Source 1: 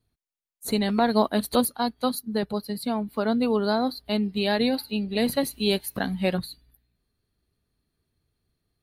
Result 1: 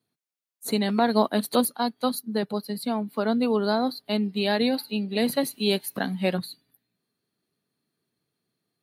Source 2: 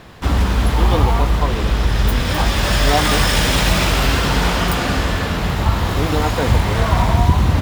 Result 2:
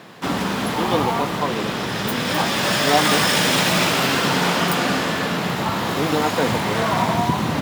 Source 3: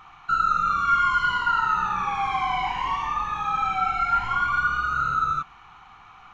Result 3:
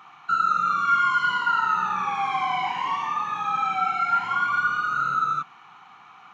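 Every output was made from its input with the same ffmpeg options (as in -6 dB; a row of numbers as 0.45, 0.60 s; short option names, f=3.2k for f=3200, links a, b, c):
-af "highpass=f=150:w=0.5412,highpass=f=150:w=1.3066"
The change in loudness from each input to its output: 0.0, -2.5, 0.0 LU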